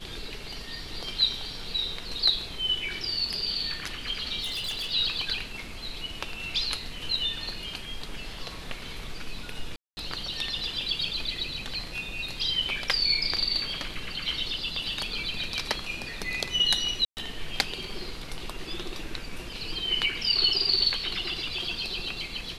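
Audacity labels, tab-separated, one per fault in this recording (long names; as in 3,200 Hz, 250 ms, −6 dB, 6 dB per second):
4.410000	4.920000	clipping −28.5 dBFS
9.760000	9.970000	drop-out 210 ms
17.050000	17.170000	drop-out 119 ms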